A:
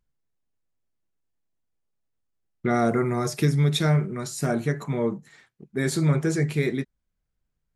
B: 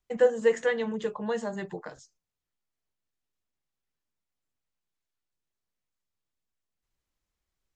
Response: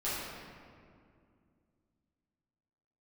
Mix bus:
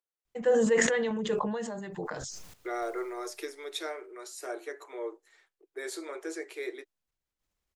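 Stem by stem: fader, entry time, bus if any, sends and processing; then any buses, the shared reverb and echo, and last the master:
-9.5 dB, 0.00 s, no send, steep high-pass 330 Hz 72 dB/octave
-0.5 dB, 0.25 s, no send, random-step tremolo, depth 80%; decay stretcher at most 24 dB/s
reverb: none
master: none

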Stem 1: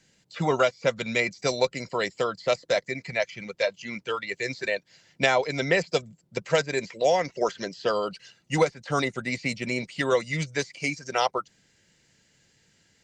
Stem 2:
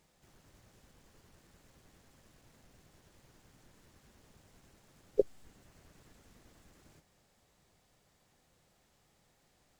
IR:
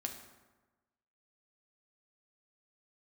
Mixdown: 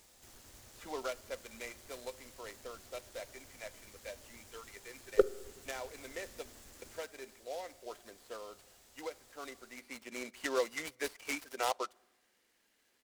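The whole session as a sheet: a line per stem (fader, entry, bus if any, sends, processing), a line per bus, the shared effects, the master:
-9.5 dB, 0.45 s, send -22 dB, high-pass 220 Hz 24 dB/octave; delay time shaken by noise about 4 kHz, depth 0.038 ms; auto duck -13 dB, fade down 1.65 s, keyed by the second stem
+2.0 dB, 0.00 s, send -8.5 dB, treble shelf 3.8 kHz +10.5 dB; hard clipper -17 dBFS, distortion -13 dB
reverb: on, RT60 1.2 s, pre-delay 4 ms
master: peaking EQ 160 Hz -12.5 dB 0.49 oct

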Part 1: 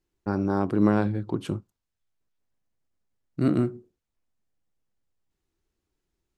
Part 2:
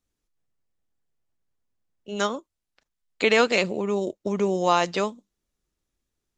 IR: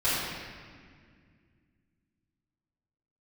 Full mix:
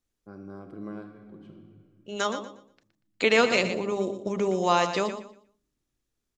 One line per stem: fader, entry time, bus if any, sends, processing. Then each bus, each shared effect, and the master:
-18.5 dB, 0.00 s, send -17.5 dB, no echo send, comb of notches 900 Hz; level-controlled noise filter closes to 1 kHz, open at -21 dBFS; auto duck -12 dB, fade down 1.10 s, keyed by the second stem
-1.5 dB, 0.00 s, no send, echo send -10 dB, de-hum 67.38 Hz, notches 19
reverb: on, RT60 2.0 s, pre-delay 3 ms
echo: feedback delay 119 ms, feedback 25%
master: none

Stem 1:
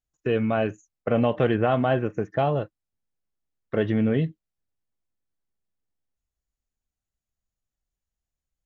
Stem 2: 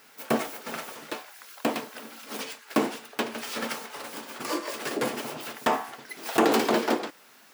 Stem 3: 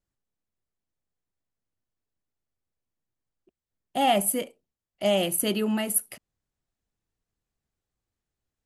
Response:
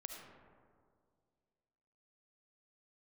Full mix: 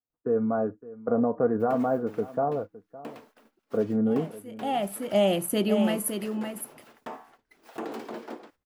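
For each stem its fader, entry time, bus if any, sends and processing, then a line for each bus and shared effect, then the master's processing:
-2.5 dB, 0.00 s, no send, echo send -18 dB, elliptic band-pass 100–1300 Hz, stop band 40 dB; peaking EQ 150 Hz -5.5 dB 0.77 oct; comb 4.2 ms, depth 55%
-13.5 dB, 1.40 s, no send, no echo send, gate -41 dBFS, range -19 dB
+2.0 dB, 0.10 s, no send, echo send -7 dB, auto duck -23 dB, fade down 0.25 s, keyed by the first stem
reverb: none
echo: delay 562 ms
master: treble shelf 2.1 kHz -9 dB

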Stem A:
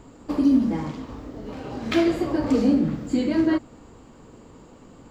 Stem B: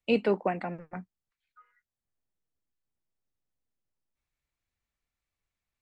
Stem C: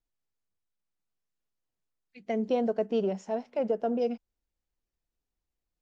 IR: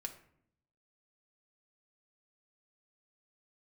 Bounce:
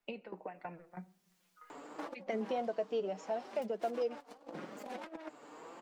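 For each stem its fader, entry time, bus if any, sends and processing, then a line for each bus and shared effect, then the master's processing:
-14.5 dB, 1.70 s, no send, self-modulated delay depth 0.95 ms; high-pass 550 Hz 12 dB/octave; compressor with a negative ratio -34 dBFS, ratio -0.5
-12.5 dB, 0.00 s, send -4.5 dB, peaking EQ 140 Hz -8 dB 1.7 oct; compression, threshold -30 dBFS, peak gain reduction 8.5 dB; tremolo saw down 3.1 Hz, depth 90%
+1.0 dB, 0.00 s, no send, high-pass 490 Hz 6 dB/octave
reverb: on, RT60 0.65 s, pre-delay 4 ms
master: flange 0.83 Hz, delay 4.8 ms, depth 2.2 ms, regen +37%; three bands compressed up and down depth 70%

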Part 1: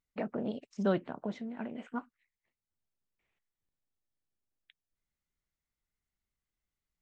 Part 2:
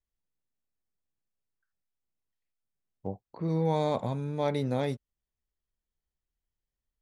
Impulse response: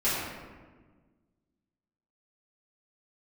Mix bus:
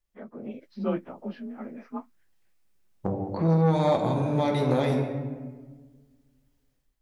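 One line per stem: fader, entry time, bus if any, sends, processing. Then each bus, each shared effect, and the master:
-5.0 dB, 0.00 s, no send, frequency axis rescaled in octaves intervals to 91%
+2.0 dB, 0.00 s, send -10.5 dB, compression 2.5:1, threshold -37 dBFS, peak gain reduction 10 dB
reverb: on, RT60 1.4 s, pre-delay 3 ms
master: level rider gain up to 8.5 dB; transformer saturation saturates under 430 Hz

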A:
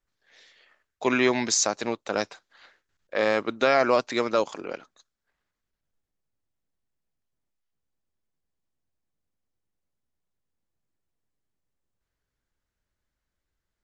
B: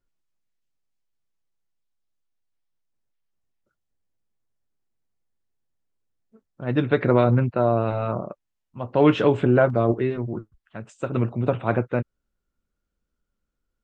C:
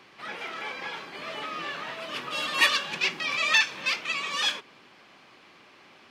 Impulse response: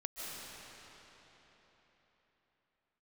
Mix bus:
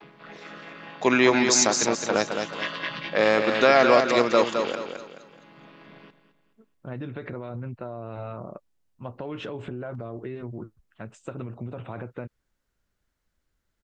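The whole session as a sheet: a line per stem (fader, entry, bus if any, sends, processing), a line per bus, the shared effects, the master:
+3.0 dB, 0.00 s, no send, echo send -6 dB, none
-2.5 dB, 0.25 s, no send, no echo send, peak limiter -16.5 dBFS, peak gain reduction 10.5 dB; compression 6:1, threshold -29 dBFS, peak gain reduction 8.5 dB
+3.0 dB, 0.00 s, no send, echo send -13 dB, vocoder on a held chord minor triad, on C#3; low-pass 4.7 kHz 24 dB/octave; auto duck -12 dB, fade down 0.25 s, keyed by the first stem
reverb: none
echo: feedback delay 213 ms, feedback 36%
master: none

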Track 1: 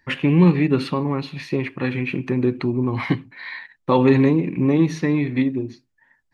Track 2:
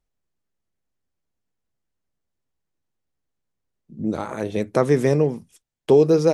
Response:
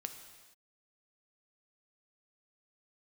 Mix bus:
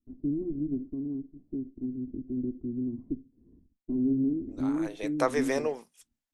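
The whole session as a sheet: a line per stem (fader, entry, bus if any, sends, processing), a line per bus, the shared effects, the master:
-4.5 dB, 0.00 s, no send, comb filter that takes the minimum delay 2.9 ms; four-pole ladder low-pass 290 Hz, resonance 50%; peaking EQ 120 Hz -5 dB 0.52 oct
4.44 s -15 dB -> 5.20 s -2.5 dB, 0.45 s, no send, high-pass 670 Hz 12 dB/octave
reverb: none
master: none

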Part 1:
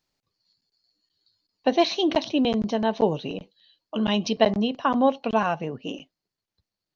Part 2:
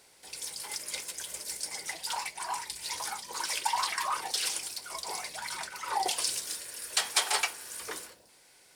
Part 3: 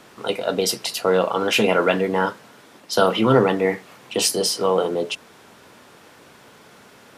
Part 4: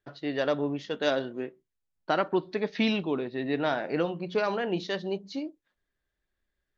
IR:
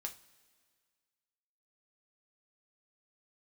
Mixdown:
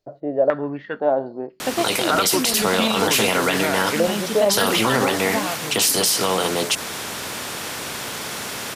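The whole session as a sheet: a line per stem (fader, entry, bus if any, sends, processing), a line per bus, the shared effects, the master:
-3.5 dB, 0.00 s, no send, none
mute
+1.0 dB, 1.60 s, no send, treble shelf 3.6 kHz +8.5 dB; spectrum-flattening compressor 2:1
+2.5 dB, 0.00 s, no send, step-sequenced low-pass 2 Hz 630–3700 Hz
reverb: none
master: peak limiter -8 dBFS, peak gain reduction 8 dB

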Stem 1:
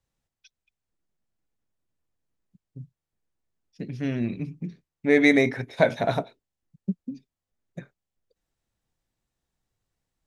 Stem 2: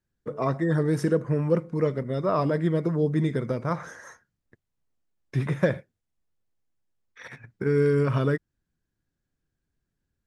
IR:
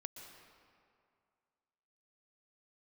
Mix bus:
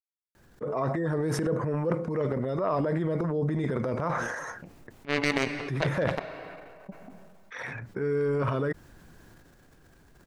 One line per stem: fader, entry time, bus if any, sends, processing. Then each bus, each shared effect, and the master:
-2.0 dB, 0.00 s, send -16.5 dB, power-law waveshaper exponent 3
-12.5 dB, 0.35 s, no send, peaking EQ 770 Hz +8.5 dB 2.4 oct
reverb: on, RT60 2.3 s, pre-delay 113 ms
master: transient shaper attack -3 dB, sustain +11 dB; level flattener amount 50%

